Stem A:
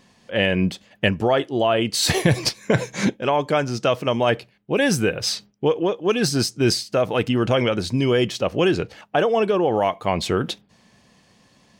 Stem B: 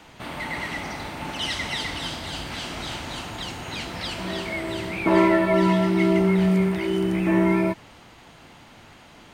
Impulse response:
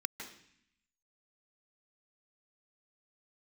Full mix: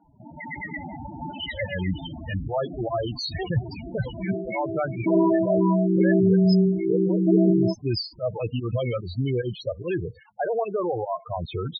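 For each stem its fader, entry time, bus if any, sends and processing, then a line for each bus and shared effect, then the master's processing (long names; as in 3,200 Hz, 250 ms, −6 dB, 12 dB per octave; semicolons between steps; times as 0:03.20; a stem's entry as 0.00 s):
+0.5 dB, 1.25 s, no send, brickwall limiter −11 dBFS, peak gain reduction 8 dB; fake sidechain pumping 147 BPM, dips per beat 1, −18 dB, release 100 ms; drawn EQ curve 110 Hz 0 dB, 220 Hz −9 dB, 2,100 Hz +2 dB, 9,900 Hz +4 dB
−4.5 dB, 0.00 s, no send, automatic gain control gain up to 7.5 dB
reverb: not used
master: high-shelf EQ 2,600 Hz −6.5 dB; spectral peaks only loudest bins 8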